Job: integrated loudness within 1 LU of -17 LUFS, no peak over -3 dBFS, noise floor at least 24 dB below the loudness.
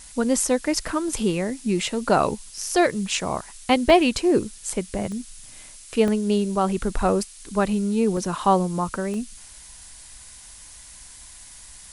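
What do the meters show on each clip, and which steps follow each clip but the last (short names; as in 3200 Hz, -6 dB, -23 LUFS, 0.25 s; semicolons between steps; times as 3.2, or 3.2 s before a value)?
dropouts 6; longest dropout 1.6 ms; noise floor -45 dBFS; noise floor target -47 dBFS; loudness -23.0 LUFS; peak -4.0 dBFS; loudness target -17.0 LUFS
-> interpolate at 2.58/3.9/5.12/6.08/8.17/9.14, 1.6 ms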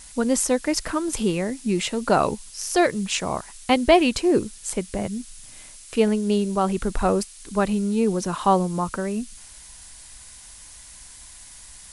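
dropouts 0; noise floor -45 dBFS; noise floor target -47 dBFS
-> noise print and reduce 6 dB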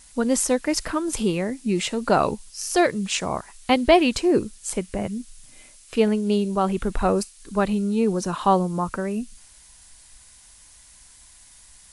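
noise floor -51 dBFS; loudness -23.0 LUFS; peak -4.0 dBFS; loudness target -17.0 LUFS
-> gain +6 dB; limiter -3 dBFS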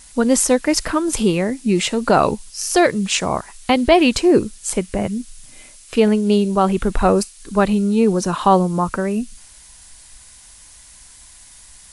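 loudness -17.5 LUFS; peak -3.0 dBFS; noise floor -45 dBFS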